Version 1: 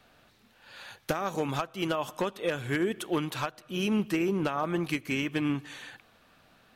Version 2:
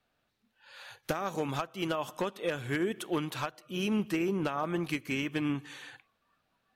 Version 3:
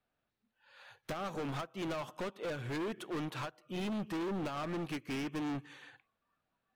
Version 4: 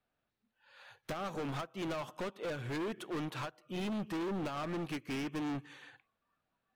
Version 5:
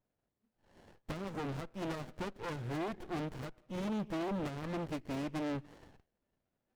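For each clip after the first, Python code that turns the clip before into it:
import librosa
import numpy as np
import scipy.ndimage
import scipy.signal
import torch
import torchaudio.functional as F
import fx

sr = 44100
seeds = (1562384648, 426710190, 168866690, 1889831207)

y1 = fx.noise_reduce_blind(x, sr, reduce_db=14)
y1 = y1 * librosa.db_to_amplitude(-2.5)
y2 = fx.high_shelf(y1, sr, hz=4200.0, db=-10.5)
y2 = np.clip(y2, -10.0 ** (-36.0 / 20.0), 10.0 ** (-36.0 / 20.0))
y2 = fx.upward_expand(y2, sr, threshold_db=-53.0, expansion=1.5)
y2 = y2 * librosa.db_to_amplitude(1.5)
y3 = y2
y4 = fx.running_max(y3, sr, window=33)
y4 = y4 * librosa.db_to_amplitude(1.0)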